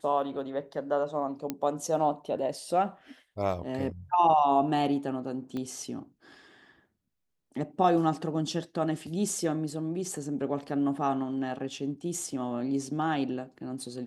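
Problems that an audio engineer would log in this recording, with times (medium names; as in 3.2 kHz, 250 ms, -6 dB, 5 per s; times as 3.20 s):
1.50 s: pop -16 dBFS
5.57 s: pop -24 dBFS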